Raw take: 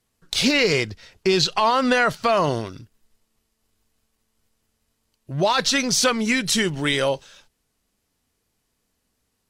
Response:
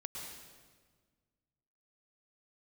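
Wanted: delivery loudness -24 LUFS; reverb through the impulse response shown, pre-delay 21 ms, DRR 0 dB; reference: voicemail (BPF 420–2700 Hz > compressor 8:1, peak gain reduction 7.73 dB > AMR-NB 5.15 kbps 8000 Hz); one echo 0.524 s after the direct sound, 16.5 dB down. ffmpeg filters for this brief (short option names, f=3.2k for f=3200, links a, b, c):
-filter_complex "[0:a]aecho=1:1:524:0.15,asplit=2[a][b];[1:a]atrim=start_sample=2205,adelay=21[c];[b][c]afir=irnorm=-1:irlink=0,volume=1.5dB[d];[a][d]amix=inputs=2:normalize=0,highpass=420,lowpass=2.7k,acompressor=threshold=-20dB:ratio=8,volume=4.5dB" -ar 8000 -c:a libopencore_amrnb -b:a 5150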